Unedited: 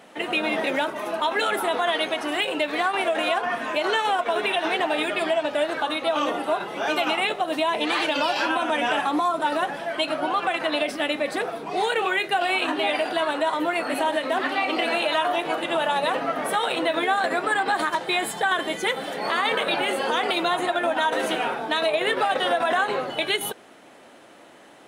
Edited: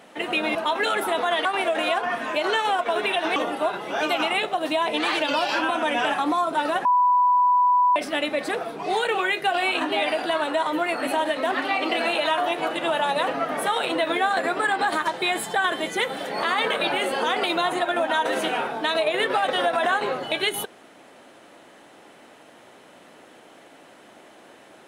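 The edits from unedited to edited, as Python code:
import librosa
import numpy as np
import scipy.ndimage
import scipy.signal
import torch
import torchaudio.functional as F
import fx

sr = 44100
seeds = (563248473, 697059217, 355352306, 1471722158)

y = fx.edit(x, sr, fx.cut(start_s=0.55, length_s=0.56),
    fx.cut(start_s=2.01, length_s=0.84),
    fx.cut(start_s=4.76, length_s=1.47),
    fx.bleep(start_s=9.72, length_s=1.11, hz=989.0, db=-15.0), tone=tone)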